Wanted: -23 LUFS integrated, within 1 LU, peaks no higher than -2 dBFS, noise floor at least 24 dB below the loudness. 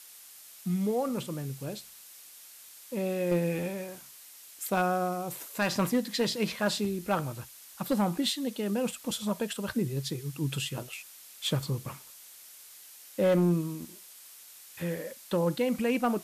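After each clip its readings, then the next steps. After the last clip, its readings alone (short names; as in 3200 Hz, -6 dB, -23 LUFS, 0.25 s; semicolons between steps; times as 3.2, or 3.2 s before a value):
clipped 0.5%; flat tops at -19.5 dBFS; noise floor -51 dBFS; noise floor target -55 dBFS; loudness -31.0 LUFS; peak -19.5 dBFS; loudness target -23.0 LUFS
-> clip repair -19.5 dBFS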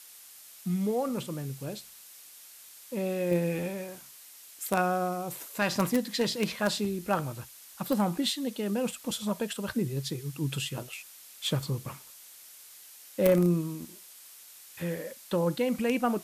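clipped 0.0%; noise floor -51 dBFS; noise floor target -55 dBFS
-> denoiser 6 dB, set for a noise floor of -51 dBFS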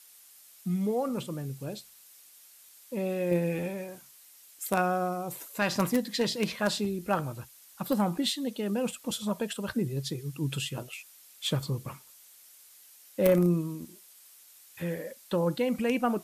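noise floor -55 dBFS; loudness -30.5 LUFS; peak -10.5 dBFS; loudness target -23.0 LUFS
-> gain +7.5 dB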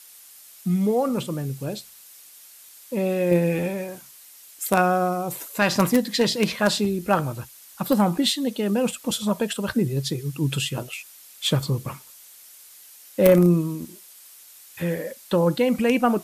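loudness -23.0 LUFS; peak -3.0 dBFS; noise floor -48 dBFS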